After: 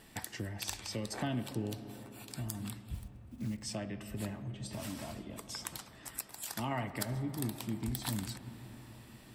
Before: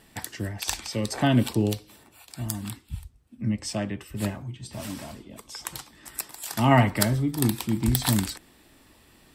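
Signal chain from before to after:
0:02.94–0:03.64: one scale factor per block 5 bits
0:05.77–0:07.09: harmonic and percussive parts rebalanced harmonic −6 dB
downward compressor 2.5 to 1, threshold −38 dBFS, peak gain reduction 15 dB
convolution reverb RT60 4.4 s, pre-delay 25 ms, DRR 11 dB
level −1.5 dB

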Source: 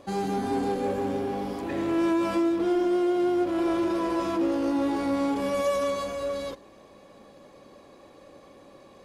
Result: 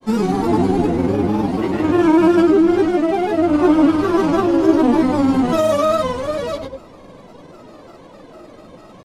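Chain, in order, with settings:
rectangular room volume 570 cubic metres, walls furnished, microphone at 8.1 metres
granular cloud, pitch spread up and down by 3 semitones

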